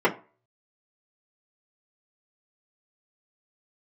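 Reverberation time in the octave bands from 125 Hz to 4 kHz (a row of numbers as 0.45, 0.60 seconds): 0.35, 0.30, 0.35, 0.35, 0.30, 0.20 seconds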